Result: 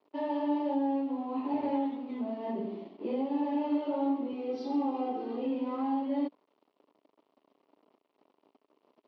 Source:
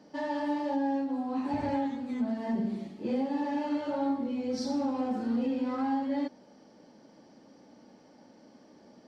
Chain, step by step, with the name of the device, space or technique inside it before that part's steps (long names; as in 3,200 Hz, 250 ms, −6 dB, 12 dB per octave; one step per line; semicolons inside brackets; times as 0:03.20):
blown loudspeaker (dead-zone distortion −52.5 dBFS; loudspeaker in its box 240–3,900 Hz, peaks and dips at 290 Hz +7 dB, 410 Hz +10 dB, 640 Hz +6 dB, 1,000 Hz +7 dB, 1,600 Hz −9 dB, 2,900 Hz +5 dB)
0:04.33–0:05.45: comb filter 2.5 ms, depth 63%
level −4.5 dB